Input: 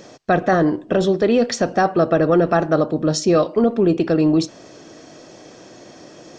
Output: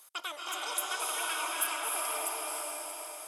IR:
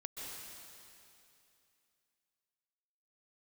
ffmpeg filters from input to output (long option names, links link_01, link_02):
-filter_complex "[0:a]asetrate=85995,aresample=44100,aderivative[link_01];[1:a]atrim=start_sample=2205,asetrate=24696,aresample=44100[link_02];[link_01][link_02]afir=irnorm=-1:irlink=0,volume=-5.5dB"